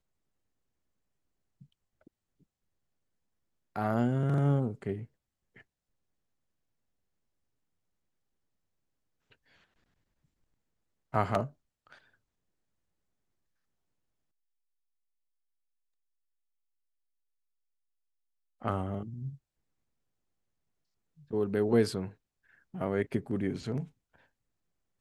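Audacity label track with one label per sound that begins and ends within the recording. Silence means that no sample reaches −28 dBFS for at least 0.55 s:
3.760000	4.940000	sound
11.140000	11.430000	sound
18.650000	19.030000	sound
21.330000	22.040000	sound
22.810000	23.800000	sound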